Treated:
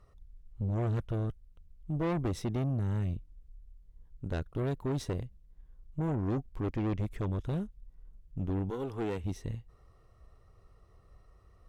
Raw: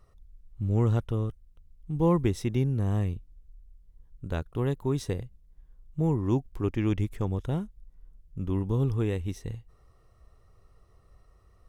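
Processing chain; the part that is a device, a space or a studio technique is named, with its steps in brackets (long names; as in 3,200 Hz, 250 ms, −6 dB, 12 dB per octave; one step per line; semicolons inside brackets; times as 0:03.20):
0:08.69–0:09.23: high-pass filter 430 Hz → 110 Hz 12 dB per octave
tube preamp driven hard (tube saturation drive 30 dB, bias 0.5; high-shelf EQ 6,400 Hz −7 dB)
level +2 dB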